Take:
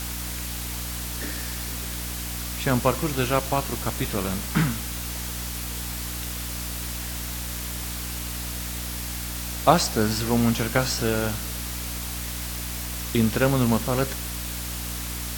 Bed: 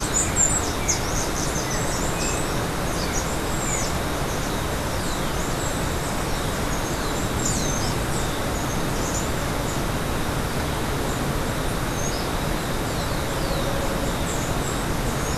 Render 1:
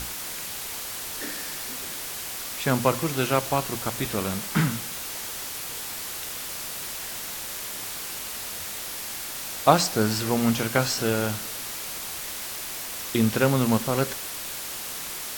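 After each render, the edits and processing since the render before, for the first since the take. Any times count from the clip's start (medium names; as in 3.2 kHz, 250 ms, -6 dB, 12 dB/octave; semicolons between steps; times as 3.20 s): hum notches 60/120/180/240/300 Hz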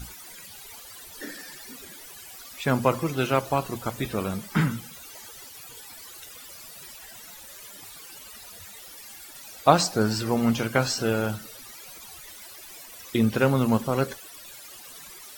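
noise reduction 16 dB, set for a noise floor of -35 dBFS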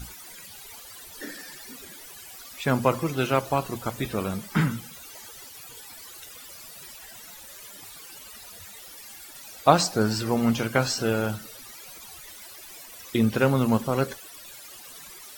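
no audible change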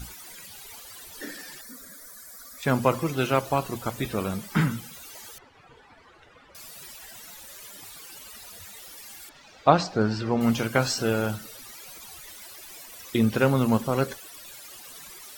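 1.61–2.63 s: static phaser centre 560 Hz, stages 8; 5.38–6.55 s: low-pass 1.7 kHz; 9.29–10.41 s: distance through air 160 m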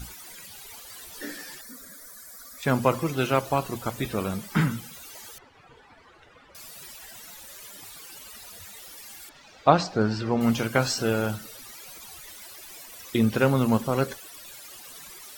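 0.88–1.56 s: doubling 17 ms -6.5 dB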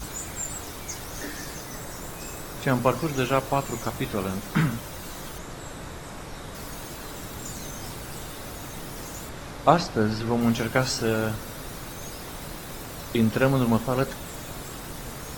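add bed -13.5 dB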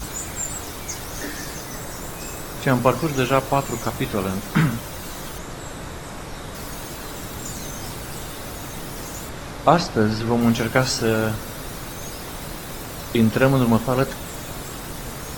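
trim +4.5 dB; peak limiter -1 dBFS, peak gain reduction 3 dB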